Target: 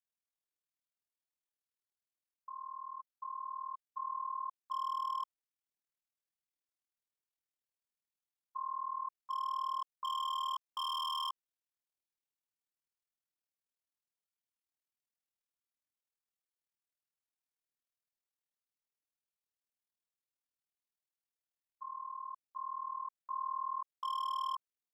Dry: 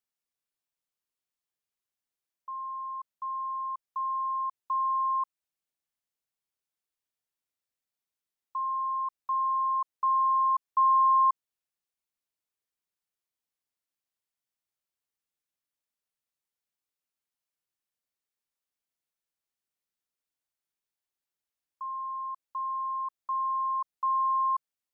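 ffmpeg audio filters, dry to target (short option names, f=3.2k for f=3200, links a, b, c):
-af "tremolo=f=39:d=0.889,aeval=exprs='0.0501*(abs(mod(val(0)/0.0501+3,4)-2)-1)':c=same,volume=-5dB"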